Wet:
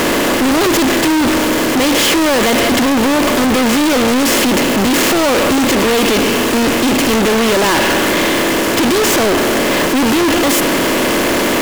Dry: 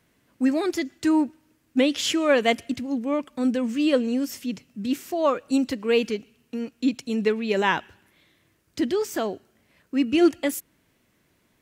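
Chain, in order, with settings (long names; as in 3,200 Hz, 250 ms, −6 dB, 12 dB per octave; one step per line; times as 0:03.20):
compressor on every frequency bin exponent 0.4
fuzz pedal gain 34 dB, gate −41 dBFS
leveller curve on the samples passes 3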